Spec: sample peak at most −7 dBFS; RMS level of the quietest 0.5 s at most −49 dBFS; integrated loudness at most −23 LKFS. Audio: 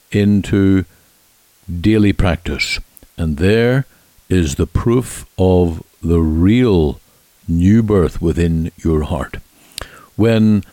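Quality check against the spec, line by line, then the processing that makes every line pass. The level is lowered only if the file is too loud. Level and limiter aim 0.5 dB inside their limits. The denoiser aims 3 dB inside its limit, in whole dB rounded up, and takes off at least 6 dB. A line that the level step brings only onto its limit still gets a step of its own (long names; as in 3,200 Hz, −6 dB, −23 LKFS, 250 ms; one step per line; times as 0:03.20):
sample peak −3.5 dBFS: out of spec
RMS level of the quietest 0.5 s −53 dBFS: in spec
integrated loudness −15.5 LKFS: out of spec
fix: level −8 dB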